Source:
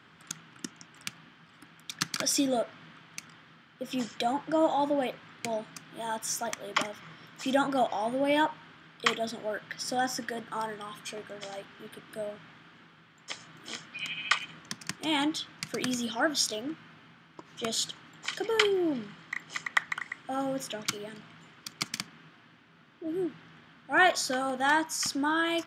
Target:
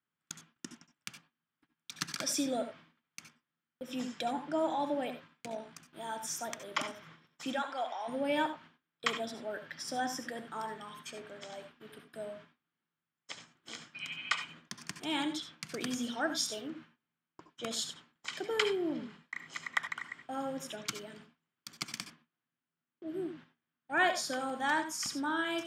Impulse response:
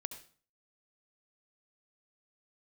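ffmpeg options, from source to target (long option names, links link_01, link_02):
-filter_complex "[0:a]agate=range=-29dB:threshold=-48dB:ratio=16:detection=peak,asettb=1/sr,asplit=3[link_01][link_02][link_03];[link_01]atrim=end=5.334[link_04];[link_02]atrim=start=5.33:end=5.85,asetpts=PTS-STARTPTS,afade=type=in:duration=0.004:curve=qsin,afade=type=out:start_time=0.516:duration=0.004:curve=qsin,tremolo=f=55:d=0.519[link_05];[link_03]atrim=start=5.846[link_06];[link_04][link_05]acrossfade=duration=0.004:curve1=hsin:curve2=qsin[link_07];[link_07][link_06]acrossfade=duration=0.004:curve1=qsin:curve2=hsin,asplit=3[link_08][link_09][link_10];[link_08]afade=type=out:start_time=7.52:duration=0.02[link_11];[link_09]highpass=710,lowpass=5900,afade=type=in:start_time=7.52:duration=0.02,afade=type=out:start_time=8.07:duration=0.02[link_12];[link_10]afade=type=in:start_time=8.07:duration=0.02[link_13];[link_11][link_12][link_13]amix=inputs=3:normalize=0[link_14];[1:a]atrim=start_sample=2205,atrim=end_sample=4410[link_15];[link_14][link_15]afir=irnorm=-1:irlink=0,volume=-3.5dB"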